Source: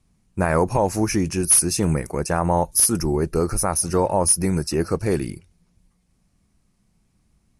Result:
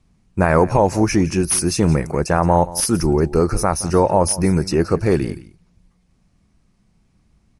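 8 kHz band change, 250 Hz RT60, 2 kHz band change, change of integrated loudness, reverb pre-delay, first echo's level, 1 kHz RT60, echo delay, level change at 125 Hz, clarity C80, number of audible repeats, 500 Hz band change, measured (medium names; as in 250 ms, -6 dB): -3.5 dB, no reverb, +4.5 dB, +2.5 dB, no reverb, -18.0 dB, no reverb, 173 ms, +5.0 dB, no reverb, 1, +5.0 dB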